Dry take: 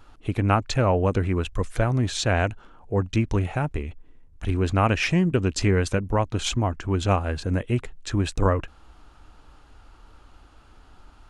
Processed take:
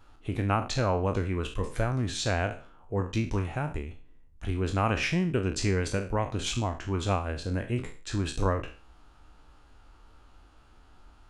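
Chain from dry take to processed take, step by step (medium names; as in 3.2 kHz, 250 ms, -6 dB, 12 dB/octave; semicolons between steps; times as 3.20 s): spectral sustain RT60 0.39 s; trim -6.5 dB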